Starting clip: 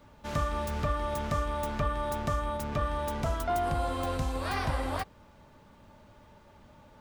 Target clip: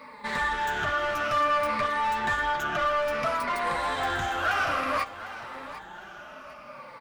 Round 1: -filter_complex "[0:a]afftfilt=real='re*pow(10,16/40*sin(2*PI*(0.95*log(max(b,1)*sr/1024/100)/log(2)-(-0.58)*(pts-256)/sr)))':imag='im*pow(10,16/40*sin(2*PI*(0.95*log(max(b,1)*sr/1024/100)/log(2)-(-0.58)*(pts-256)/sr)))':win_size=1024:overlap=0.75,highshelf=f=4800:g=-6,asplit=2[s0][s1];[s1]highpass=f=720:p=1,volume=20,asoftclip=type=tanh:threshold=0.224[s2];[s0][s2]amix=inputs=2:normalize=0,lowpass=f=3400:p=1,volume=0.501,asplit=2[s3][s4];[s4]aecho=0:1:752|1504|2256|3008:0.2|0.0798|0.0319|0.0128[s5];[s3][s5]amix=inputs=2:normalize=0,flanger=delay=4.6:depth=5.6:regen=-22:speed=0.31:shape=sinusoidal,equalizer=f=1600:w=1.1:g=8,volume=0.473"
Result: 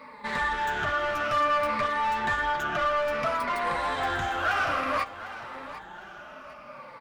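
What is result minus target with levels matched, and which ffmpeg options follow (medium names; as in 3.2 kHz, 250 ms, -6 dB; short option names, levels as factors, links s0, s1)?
8 kHz band -3.0 dB
-filter_complex "[0:a]afftfilt=real='re*pow(10,16/40*sin(2*PI*(0.95*log(max(b,1)*sr/1024/100)/log(2)-(-0.58)*(pts-256)/sr)))':imag='im*pow(10,16/40*sin(2*PI*(0.95*log(max(b,1)*sr/1024/100)/log(2)-(-0.58)*(pts-256)/sr)))':win_size=1024:overlap=0.75,asplit=2[s0][s1];[s1]highpass=f=720:p=1,volume=20,asoftclip=type=tanh:threshold=0.224[s2];[s0][s2]amix=inputs=2:normalize=0,lowpass=f=3400:p=1,volume=0.501,asplit=2[s3][s4];[s4]aecho=0:1:752|1504|2256|3008:0.2|0.0798|0.0319|0.0128[s5];[s3][s5]amix=inputs=2:normalize=0,flanger=delay=4.6:depth=5.6:regen=-22:speed=0.31:shape=sinusoidal,equalizer=f=1600:w=1.1:g=8,volume=0.473"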